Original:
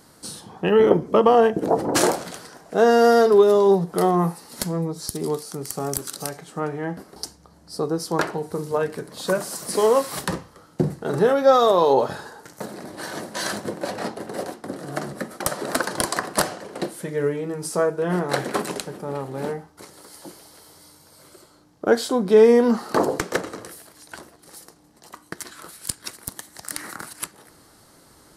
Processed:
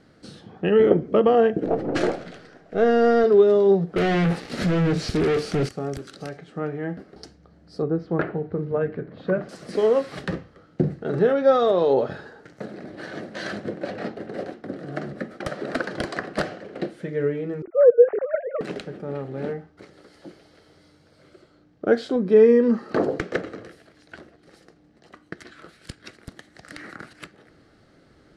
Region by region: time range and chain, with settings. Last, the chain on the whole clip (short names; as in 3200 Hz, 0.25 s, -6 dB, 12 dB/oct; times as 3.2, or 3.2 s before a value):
1.65–3.24 half-wave gain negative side -3 dB + high shelf 10000 Hz -4 dB
3.96–5.69 sample leveller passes 5 + hard clip -18 dBFS
7.82–9.49 LPF 2100 Hz + bell 96 Hz +5 dB 2.2 oct
17.62–18.61 sine-wave speech + steep low-pass 2500 Hz + tilt shelf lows +9.5 dB, about 1300 Hz
22.16–22.91 bell 3600 Hz -5.5 dB 0.56 oct + notch comb 720 Hz
whole clip: LPF 2700 Hz 12 dB/oct; bell 970 Hz -14 dB 0.53 oct